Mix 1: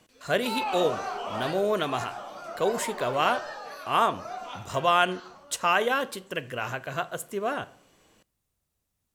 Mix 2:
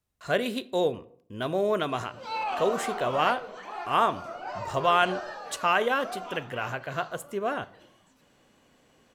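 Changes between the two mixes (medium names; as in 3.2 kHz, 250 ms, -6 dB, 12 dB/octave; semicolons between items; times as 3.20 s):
background: entry +1.80 s; master: add treble shelf 4.6 kHz -6.5 dB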